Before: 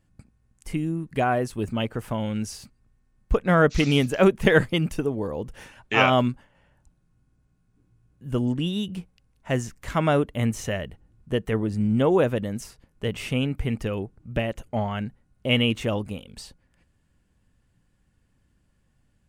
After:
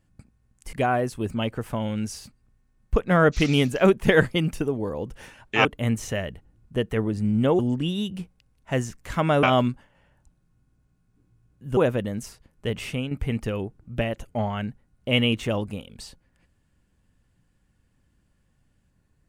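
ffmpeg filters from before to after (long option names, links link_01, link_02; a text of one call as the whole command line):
ffmpeg -i in.wav -filter_complex "[0:a]asplit=7[link_01][link_02][link_03][link_04][link_05][link_06][link_07];[link_01]atrim=end=0.732[link_08];[link_02]atrim=start=1.108:end=6.032[link_09];[link_03]atrim=start=10.208:end=12.152[link_10];[link_04]atrim=start=8.368:end=10.212[link_11];[link_05]atrim=start=6.028:end=8.372[link_12];[link_06]atrim=start=12.148:end=13.49,asetpts=PTS-STARTPTS,afade=type=out:start_time=1.062:duration=0.28:silence=0.375837[link_13];[link_07]atrim=start=13.49,asetpts=PTS-STARTPTS,afade=type=in:duration=0.004:curve=hsin:silence=0.375837[link_14];[link_08][link_09]acrossfade=duration=0.004:curve1=hsin:curve2=hsin[link_15];[link_15][link_10]acrossfade=duration=0.004:curve1=hsin:curve2=hsin[link_16];[link_16][link_11]acrossfade=duration=0.004:curve1=hsin:curve2=hsin[link_17];[link_17][link_12]acrossfade=duration=0.004:curve1=hsin:curve2=hsin[link_18];[link_13][link_14]concat=n=2:v=0:a=1[link_19];[link_18][link_19]acrossfade=duration=0.004:curve1=hsin:curve2=hsin" out.wav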